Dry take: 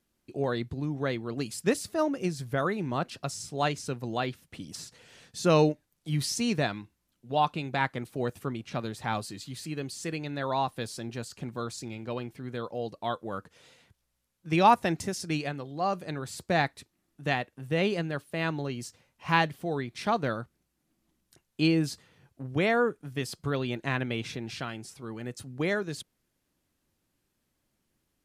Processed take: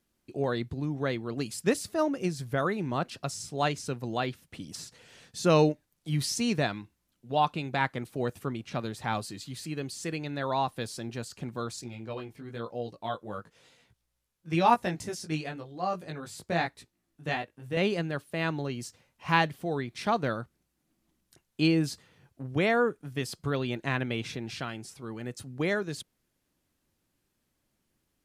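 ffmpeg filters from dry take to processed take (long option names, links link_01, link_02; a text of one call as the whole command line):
ffmpeg -i in.wav -filter_complex "[0:a]asettb=1/sr,asplit=3[link_01][link_02][link_03];[link_01]atrim=end=11.814[link_04];[link_02]atrim=start=11.81:end=17.77,asetpts=PTS-STARTPTS,afade=type=in:duration=0.004:curve=qsin,afade=type=out:start_time=5.956:duration=0.004:curve=qsin,flanger=delay=16.5:depth=2.7:speed=1[link_05];[link_03]atrim=start=17.766[link_06];[link_04][link_05]acrossfade=duration=0.004:curve1=hsin:curve2=qsin[link_07];[link_07][link_06]acrossfade=duration=0.004:curve1=qsin:curve2=hsin" out.wav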